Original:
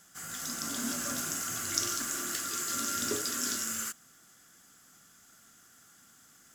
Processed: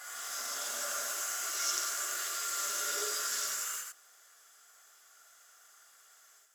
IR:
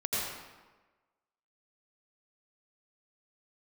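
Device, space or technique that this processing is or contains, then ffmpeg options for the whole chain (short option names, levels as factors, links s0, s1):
ghost voice: -filter_complex "[0:a]areverse[s0];[1:a]atrim=start_sample=2205[s1];[s0][s1]afir=irnorm=-1:irlink=0,areverse,highpass=f=510:w=0.5412,highpass=f=510:w=1.3066,volume=0.447"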